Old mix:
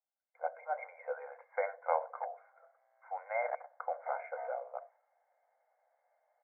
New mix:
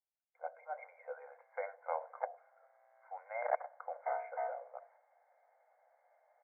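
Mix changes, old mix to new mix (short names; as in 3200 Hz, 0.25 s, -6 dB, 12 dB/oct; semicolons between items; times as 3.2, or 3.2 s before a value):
speech -6.5 dB; background +5.0 dB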